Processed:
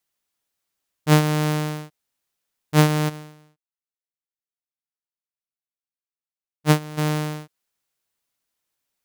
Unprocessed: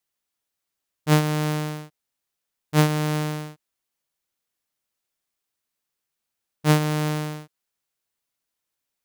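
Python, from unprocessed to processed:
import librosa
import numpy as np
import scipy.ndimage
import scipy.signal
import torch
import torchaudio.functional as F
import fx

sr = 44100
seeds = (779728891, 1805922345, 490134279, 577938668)

y = fx.upward_expand(x, sr, threshold_db=-29.0, expansion=2.5, at=(3.08, 6.97), fade=0.02)
y = F.gain(torch.from_numpy(y), 2.5).numpy()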